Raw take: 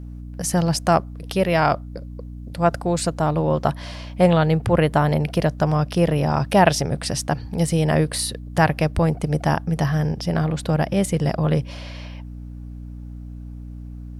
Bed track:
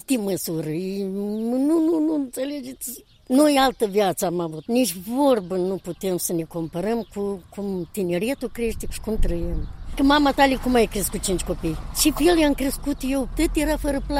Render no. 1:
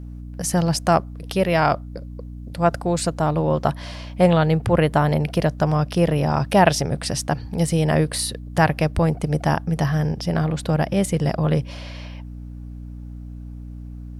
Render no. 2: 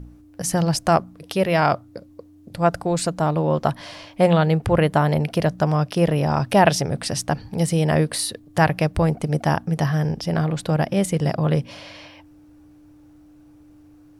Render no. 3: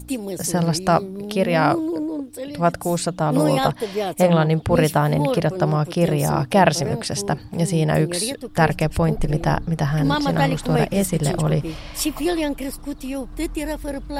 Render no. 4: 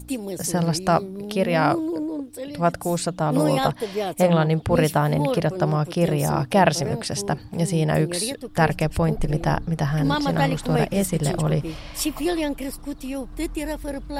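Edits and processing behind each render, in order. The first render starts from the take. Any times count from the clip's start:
no processing that can be heard
hum removal 60 Hz, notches 4
mix in bed track −4.5 dB
level −2 dB

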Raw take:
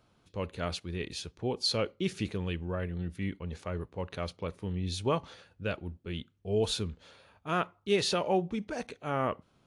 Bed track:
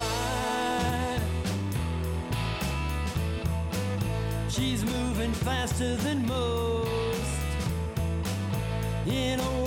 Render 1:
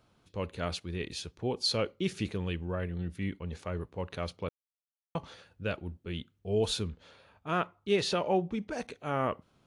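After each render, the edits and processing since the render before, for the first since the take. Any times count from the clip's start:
0:04.49–0:05.15: silence
0:06.89–0:08.72: high-shelf EQ 6,000 Hz −7 dB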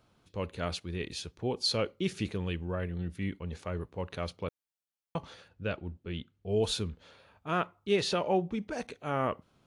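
0:05.48–0:06.49: high-frequency loss of the air 77 metres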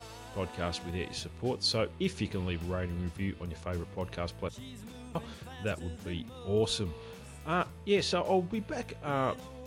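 mix in bed track −18 dB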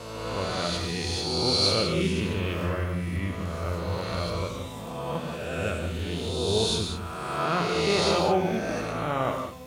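peak hold with a rise ahead of every peak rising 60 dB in 1.96 s
reverb whose tail is shaped and stops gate 230 ms flat, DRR 2.5 dB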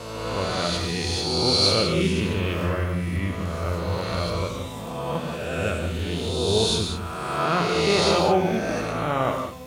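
level +3.5 dB

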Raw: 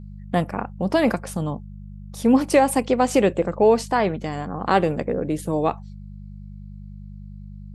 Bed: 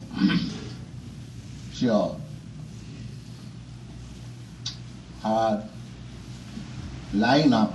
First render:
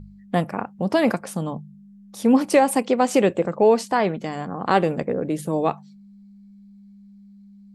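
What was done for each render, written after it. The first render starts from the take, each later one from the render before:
hum removal 50 Hz, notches 3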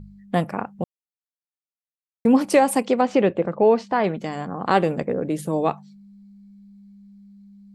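0:00.84–0:02.25: silence
0:03.01–0:04.04: high-frequency loss of the air 190 metres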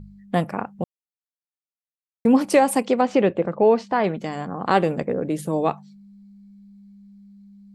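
no processing that can be heard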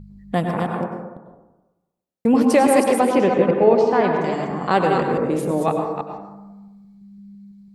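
delay that plays each chunk backwards 167 ms, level −4.5 dB
dense smooth reverb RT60 1.1 s, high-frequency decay 0.35×, pre-delay 85 ms, DRR 3.5 dB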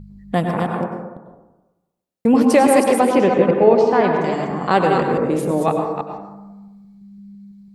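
level +2 dB
brickwall limiter −1 dBFS, peak gain reduction 1 dB

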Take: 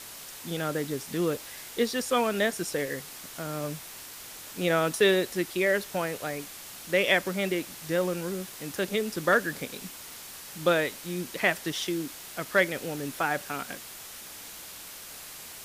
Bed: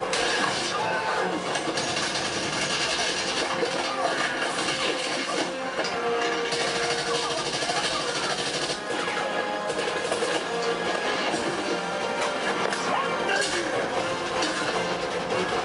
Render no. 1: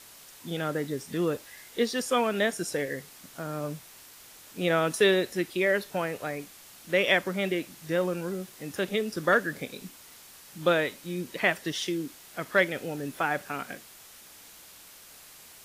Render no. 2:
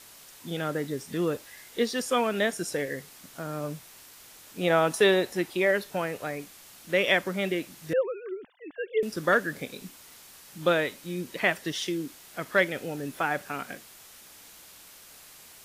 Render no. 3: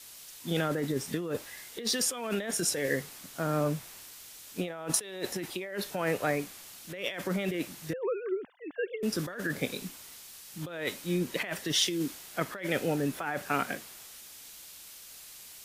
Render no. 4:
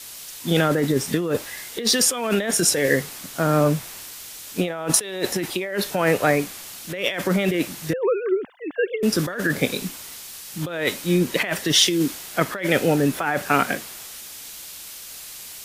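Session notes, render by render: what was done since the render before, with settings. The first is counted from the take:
noise reduction from a noise print 7 dB
0:04.63–0:05.71: parametric band 830 Hz +7 dB; 0:07.93–0:09.03: three sine waves on the formant tracks
compressor whose output falls as the input rises −32 dBFS, ratio −1; multiband upward and downward expander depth 40%
level +10.5 dB; brickwall limiter −3 dBFS, peak gain reduction 1 dB

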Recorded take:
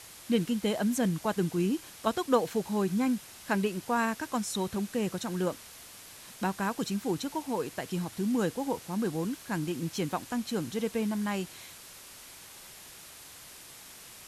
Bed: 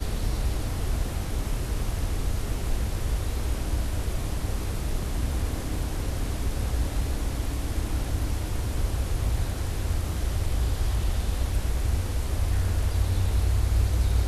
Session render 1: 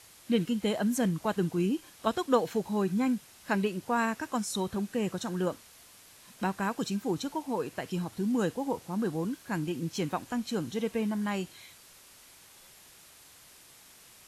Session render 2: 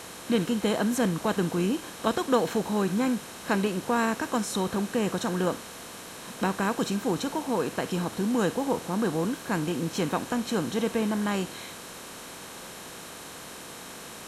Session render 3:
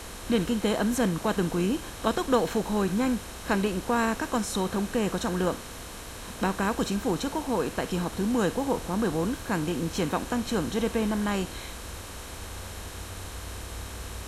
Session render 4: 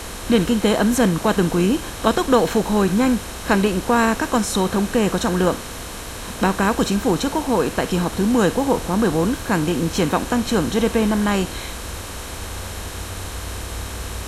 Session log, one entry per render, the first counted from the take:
noise reduction from a noise print 6 dB
compressor on every frequency bin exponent 0.6
mix in bed −17 dB
level +8.5 dB; brickwall limiter −2 dBFS, peak gain reduction 1.5 dB

